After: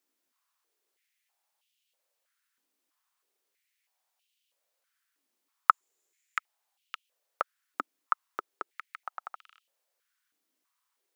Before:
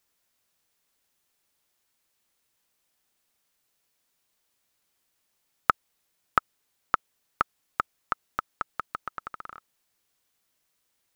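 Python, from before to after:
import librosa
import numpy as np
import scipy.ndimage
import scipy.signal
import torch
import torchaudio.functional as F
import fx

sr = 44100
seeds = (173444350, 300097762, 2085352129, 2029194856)

y = fx.peak_eq(x, sr, hz=7100.0, db=15.0, octaves=0.23, at=(5.7, 6.38))
y = fx.filter_held_highpass(y, sr, hz=3.1, low_hz=280.0, high_hz=2900.0)
y = y * librosa.db_to_amplitude(-7.0)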